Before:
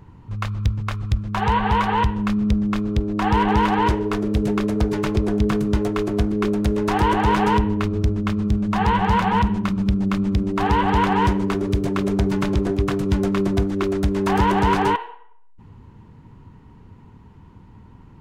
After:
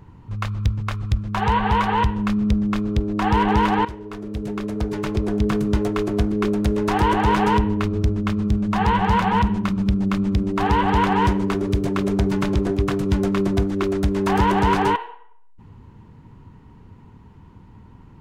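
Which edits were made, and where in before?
3.85–5.65 s: fade in, from -16 dB

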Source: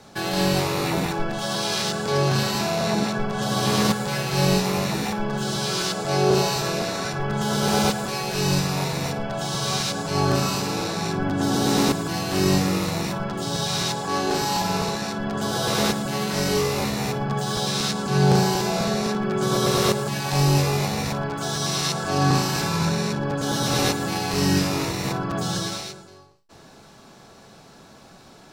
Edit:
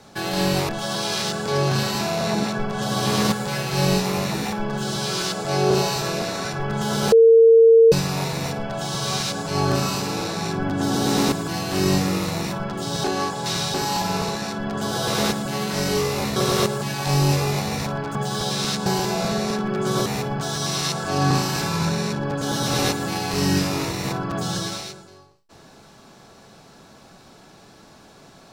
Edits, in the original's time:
0.69–1.29 s: delete
7.72–8.52 s: bleep 455 Hz -8 dBFS
13.64–14.34 s: reverse
16.96–17.31 s: swap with 19.62–21.41 s
18.02–18.42 s: delete

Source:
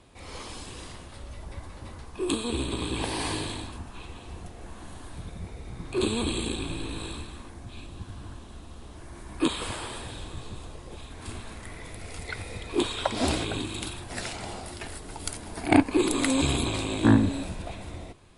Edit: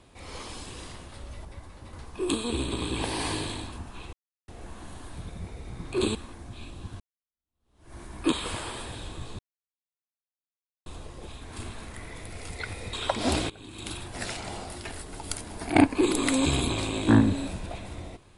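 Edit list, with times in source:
1.45–1.93 s: gain -4 dB
4.13–4.48 s: mute
6.15–7.31 s: delete
8.16–9.10 s: fade in exponential
10.55 s: insert silence 1.47 s
12.62–12.89 s: delete
13.46–13.90 s: fade in quadratic, from -18.5 dB

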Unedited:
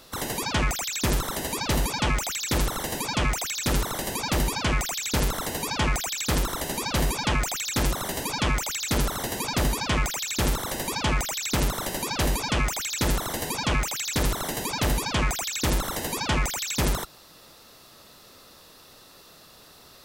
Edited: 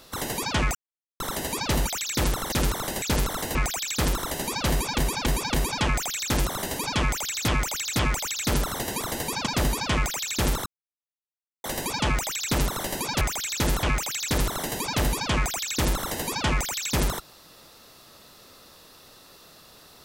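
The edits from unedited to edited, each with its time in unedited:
0.75–1.20 s: mute
1.87–2.21 s: delete
2.86–3.63 s: delete
4.13–5.06 s: delete
5.59–5.85 s: delete
7.00–7.28 s: loop, 4 plays
8.43–8.94 s: loop, 3 plays
10.66 s: insert silence 0.98 s
12.23–12.62 s: delete
13.24–13.68 s: move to 9.46 s

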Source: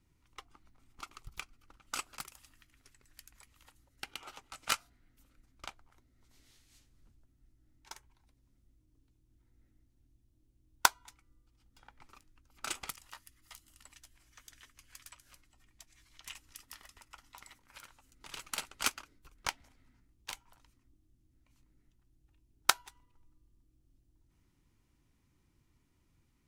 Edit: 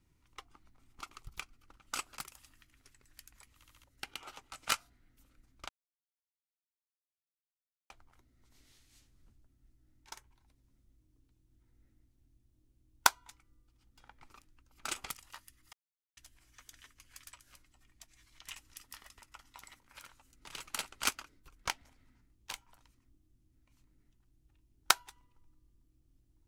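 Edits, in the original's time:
3.56 s: stutter in place 0.07 s, 4 plays
5.69 s: insert silence 2.21 s
13.52–13.96 s: mute

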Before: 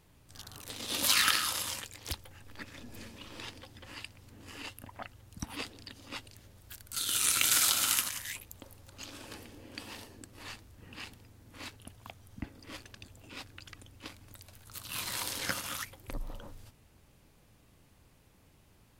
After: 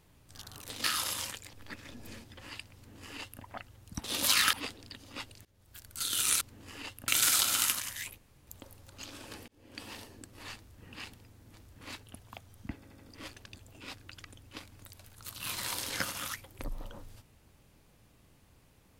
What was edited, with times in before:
0.84–1.33 s: move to 5.49 s
2.02–2.42 s: delete
3.13–3.69 s: delete
4.21–4.88 s: copy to 7.37 s
6.41–6.86 s: fade in, from -21.5 dB
8.47 s: insert room tone 0.29 s
9.48–9.84 s: fade in
10.56–10.83 s: copy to 11.54 s
12.48 s: stutter 0.08 s, 4 plays

